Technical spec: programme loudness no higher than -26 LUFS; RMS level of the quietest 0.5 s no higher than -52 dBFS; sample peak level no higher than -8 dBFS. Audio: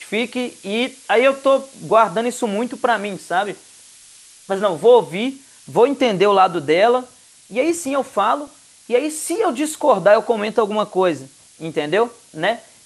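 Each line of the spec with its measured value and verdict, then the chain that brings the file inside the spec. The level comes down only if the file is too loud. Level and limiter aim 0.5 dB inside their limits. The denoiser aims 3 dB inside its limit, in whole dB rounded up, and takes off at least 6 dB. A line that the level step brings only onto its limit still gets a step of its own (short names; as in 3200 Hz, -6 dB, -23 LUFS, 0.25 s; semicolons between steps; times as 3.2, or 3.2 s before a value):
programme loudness -18.5 LUFS: fail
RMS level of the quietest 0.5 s -46 dBFS: fail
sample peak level -2.0 dBFS: fail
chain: gain -8 dB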